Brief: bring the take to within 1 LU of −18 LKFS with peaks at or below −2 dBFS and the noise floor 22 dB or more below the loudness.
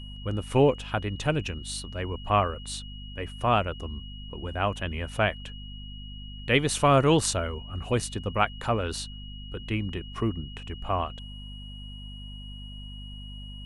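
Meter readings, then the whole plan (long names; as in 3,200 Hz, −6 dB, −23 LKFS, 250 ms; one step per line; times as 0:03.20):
mains hum 50 Hz; hum harmonics up to 250 Hz; level of the hum −39 dBFS; interfering tone 2,900 Hz; level of the tone −45 dBFS; integrated loudness −28.0 LKFS; sample peak −7.5 dBFS; target loudness −18.0 LKFS
→ mains-hum notches 50/100/150/200/250 Hz
notch filter 2,900 Hz, Q 30
level +10 dB
brickwall limiter −2 dBFS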